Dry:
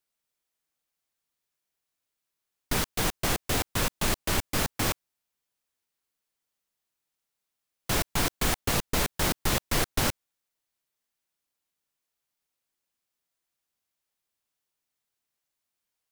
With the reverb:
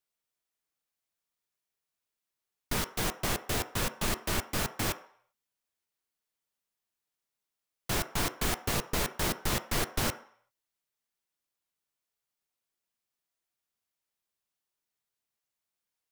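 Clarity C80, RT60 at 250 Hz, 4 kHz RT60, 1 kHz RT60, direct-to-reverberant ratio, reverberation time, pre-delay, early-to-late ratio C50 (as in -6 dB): 18.0 dB, 0.40 s, 0.55 s, 0.60 s, 9.0 dB, 0.60 s, 3 ms, 14.0 dB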